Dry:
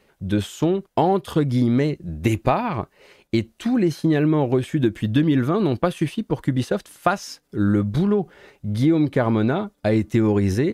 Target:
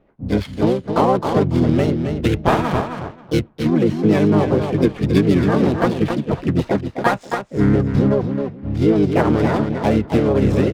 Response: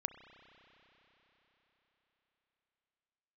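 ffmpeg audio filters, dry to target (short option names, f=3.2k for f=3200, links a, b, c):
-filter_complex "[0:a]aecho=1:1:270|540|810:0.473|0.0946|0.0189,adynamicsmooth=sensitivity=6:basefreq=980,asplit=4[a][b][c][d];[b]asetrate=29433,aresample=44100,atempo=1.49831,volume=-4dB[e];[c]asetrate=58866,aresample=44100,atempo=0.749154,volume=-3dB[f];[d]asetrate=66075,aresample=44100,atempo=0.66742,volume=-10dB[g];[a][e][f][g]amix=inputs=4:normalize=0"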